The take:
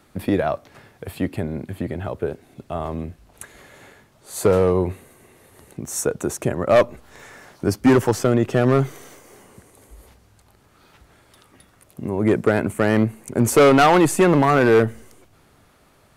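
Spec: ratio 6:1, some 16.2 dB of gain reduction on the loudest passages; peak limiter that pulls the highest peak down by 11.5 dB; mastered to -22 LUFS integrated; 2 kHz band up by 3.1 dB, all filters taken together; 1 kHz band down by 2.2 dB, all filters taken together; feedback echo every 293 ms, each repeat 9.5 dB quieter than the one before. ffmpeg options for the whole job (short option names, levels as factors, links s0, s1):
-af "equalizer=f=1000:t=o:g=-5,equalizer=f=2000:t=o:g=6,acompressor=threshold=0.0355:ratio=6,alimiter=level_in=1.41:limit=0.0631:level=0:latency=1,volume=0.708,aecho=1:1:293|586|879|1172:0.335|0.111|0.0365|0.012,volume=6.31"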